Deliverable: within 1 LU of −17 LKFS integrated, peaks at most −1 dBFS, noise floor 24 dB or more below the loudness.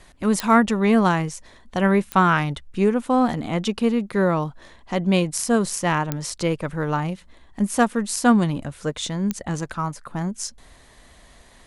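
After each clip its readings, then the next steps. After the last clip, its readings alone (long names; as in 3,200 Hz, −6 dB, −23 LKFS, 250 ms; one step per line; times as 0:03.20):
number of clicks 4; integrated loudness −22.0 LKFS; sample peak −3.5 dBFS; target loudness −17.0 LKFS
→ click removal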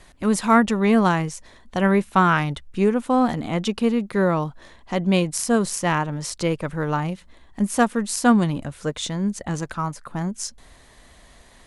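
number of clicks 0; integrated loudness −22.0 LKFS; sample peak −3.5 dBFS; target loudness −17.0 LKFS
→ level +5 dB
brickwall limiter −1 dBFS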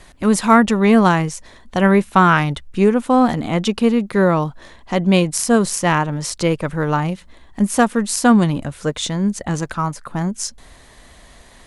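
integrated loudness −17.5 LKFS; sample peak −1.0 dBFS; background noise floor −46 dBFS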